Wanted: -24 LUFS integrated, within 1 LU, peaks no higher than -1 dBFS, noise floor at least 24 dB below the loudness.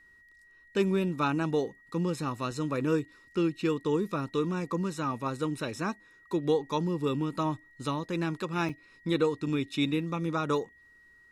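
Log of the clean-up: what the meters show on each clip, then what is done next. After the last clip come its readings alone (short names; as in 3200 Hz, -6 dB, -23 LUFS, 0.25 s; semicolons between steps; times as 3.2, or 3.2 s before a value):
dropouts 1; longest dropout 5.5 ms; steady tone 1900 Hz; tone level -56 dBFS; loudness -31.0 LUFS; peak -14.0 dBFS; loudness target -24.0 LUFS
-> interpolate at 8.69, 5.5 ms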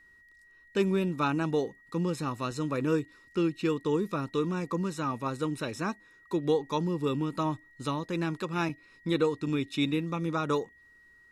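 dropouts 0; steady tone 1900 Hz; tone level -56 dBFS
-> notch 1900 Hz, Q 30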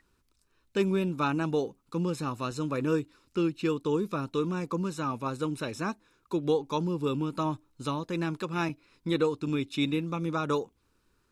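steady tone none; loudness -31.0 LUFS; peak -14.0 dBFS; loudness target -24.0 LUFS
-> gain +7 dB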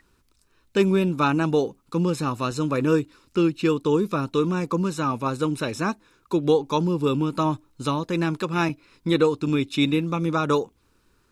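loudness -24.0 LUFS; peak -7.0 dBFS; noise floor -64 dBFS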